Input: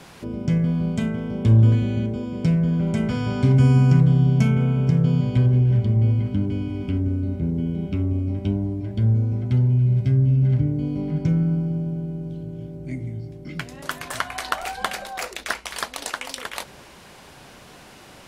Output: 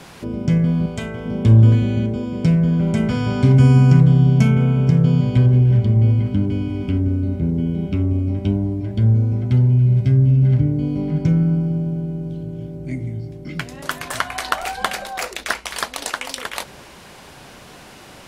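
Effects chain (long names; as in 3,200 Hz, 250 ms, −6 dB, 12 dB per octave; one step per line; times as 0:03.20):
0:00.86–0:01.26: parametric band 200 Hz −14 dB 0.78 octaves
level +4 dB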